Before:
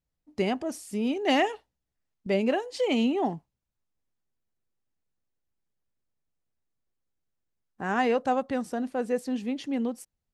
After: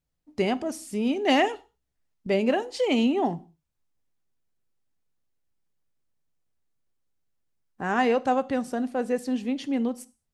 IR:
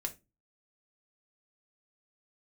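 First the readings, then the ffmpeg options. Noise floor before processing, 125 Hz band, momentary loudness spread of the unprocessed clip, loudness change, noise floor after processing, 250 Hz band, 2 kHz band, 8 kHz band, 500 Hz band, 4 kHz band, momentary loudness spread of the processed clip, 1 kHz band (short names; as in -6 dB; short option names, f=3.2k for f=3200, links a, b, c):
-85 dBFS, +1.5 dB, 10 LU, +2.0 dB, -80 dBFS, +2.5 dB, +2.0 dB, +2.0 dB, +2.0 dB, +2.0 dB, 11 LU, +2.0 dB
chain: -filter_complex "[0:a]asplit=2[a][b];[1:a]atrim=start_sample=2205,afade=t=out:st=0.17:d=0.01,atrim=end_sample=7938,asetrate=22932,aresample=44100[c];[b][c]afir=irnorm=-1:irlink=0,volume=-13dB[d];[a][d]amix=inputs=2:normalize=0"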